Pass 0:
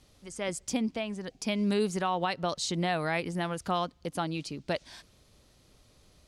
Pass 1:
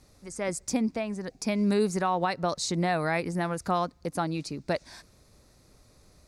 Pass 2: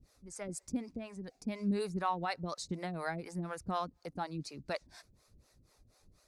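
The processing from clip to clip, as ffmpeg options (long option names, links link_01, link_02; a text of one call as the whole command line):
ffmpeg -i in.wav -af "equalizer=frequency=3100:width_type=o:width=0.36:gain=-13.5,volume=3dB" out.wav
ffmpeg -i in.wav -filter_complex "[0:a]flanger=delay=0.3:depth=1.2:regen=69:speed=1.1:shape=triangular,acrossover=split=420[link_01][link_02];[link_01]aeval=exprs='val(0)*(1-1/2+1/2*cos(2*PI*4.1*n/s))':channel_layout=same[link_03];[link_02]aeval=exprs='val(0)*(1-1/2-1/2*cos(2*PI*4.1*n/s))':channel_layout=same[link_04];[link_03][link_04]amix=inputs=2:normalize=0" out.wav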